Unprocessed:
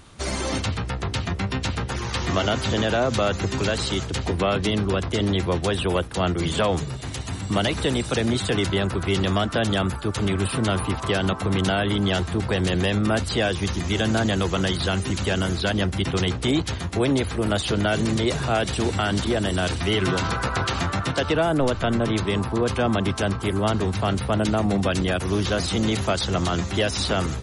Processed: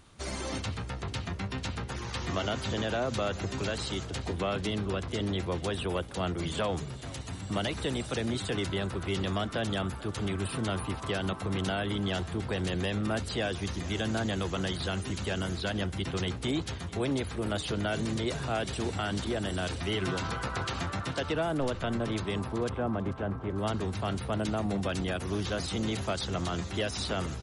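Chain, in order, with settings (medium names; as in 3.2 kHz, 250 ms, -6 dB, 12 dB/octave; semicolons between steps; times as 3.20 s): 22.69–23.58 s: low-pass 1.4 kHz 12 dB/octave; on a send: frequency-shifting echo 441 ms, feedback 50%, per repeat +45 Hz, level -19.5 dB; on the sum: trim -9 dB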